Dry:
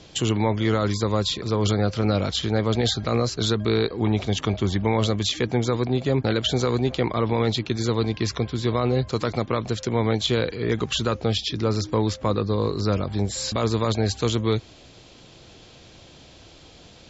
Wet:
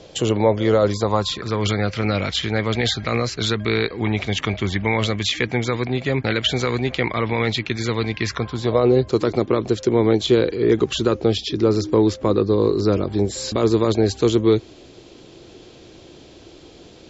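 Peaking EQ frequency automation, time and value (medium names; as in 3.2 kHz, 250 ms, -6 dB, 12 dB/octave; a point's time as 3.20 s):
peaking EQ +11.5 dB 0.89 oct
0.91 s 530 Hz
1.60 s 2.1 kHz
8.24 s 2.1 kHz
8.91 s 360 Hz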